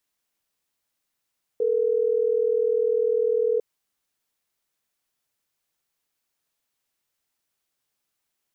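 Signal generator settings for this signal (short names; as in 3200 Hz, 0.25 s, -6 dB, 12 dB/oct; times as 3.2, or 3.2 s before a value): call progress tone ringback tone, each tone -22 dBFS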